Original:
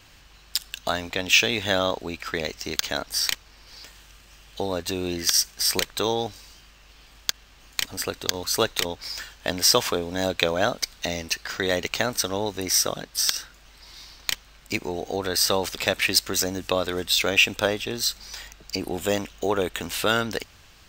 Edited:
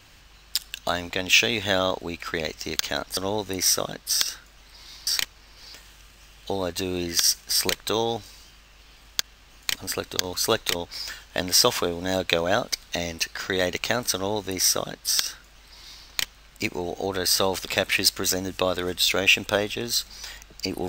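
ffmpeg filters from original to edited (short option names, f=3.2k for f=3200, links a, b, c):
-filter_complex "[0:a]asplit=3[a][b][c];[a]atrim=end=3.172[d];[b]atrim=start=12.248:end=14.152[e];[c]atrim=start=3.168[f];[d][e]acrossfade=d=0.004:c1=hsin:c2=hsin[g];[g][f]acrossfade=d=0.004:c1=hsin:c2=hsin"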